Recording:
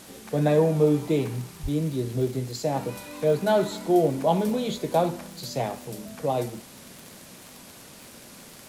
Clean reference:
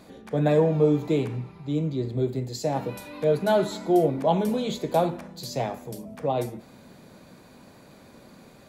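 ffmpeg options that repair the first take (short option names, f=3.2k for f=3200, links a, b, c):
-filter_complex "[0:a]adeclick=t=4,asplit=3[a][b][c];[a]afade=t=out:st=1.62:d=0.02[d];[b]highpass=f=140:w=0.5412,highpass=f=140:w=1.3066,afade=t=in:st=1.62:d=0.02,afade=t=out:st=1.74:d=0.02[e];[c]afade=t=in:st=1.74:d=0.02[f];[d][e][f]amix=inputs=3:normalize=0,afwtdn=0.0045"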